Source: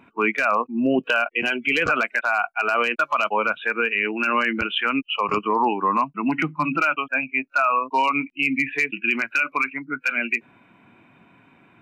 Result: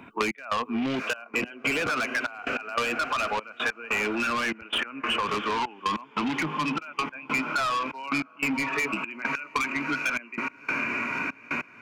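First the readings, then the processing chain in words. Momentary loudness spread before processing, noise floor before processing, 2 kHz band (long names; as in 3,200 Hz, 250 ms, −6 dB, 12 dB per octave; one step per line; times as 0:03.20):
3 LU, −56 dBFS, −6.0 dB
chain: on a send: feedback delay with all-pass diffusion 638 ms, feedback 65%, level −15 dB
on the sum: gate pattern "..x..xxxxxx" 146 BPM −24 dB
soft clipping −23 dBFS, distortion −8 dB
multiband upward and downward compressor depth 100%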